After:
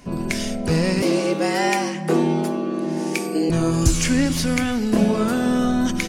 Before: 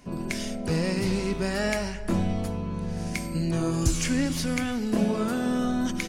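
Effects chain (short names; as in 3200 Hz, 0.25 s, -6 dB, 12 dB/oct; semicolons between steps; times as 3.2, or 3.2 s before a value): 1.02–3.5 frequency shift +150 Hz; gain +6.5 dB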